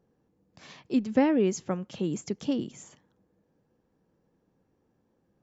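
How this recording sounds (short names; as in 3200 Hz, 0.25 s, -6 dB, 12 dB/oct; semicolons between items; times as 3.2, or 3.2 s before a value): noise floor -73 dBFS; spectral tilt -6.0 dB/oct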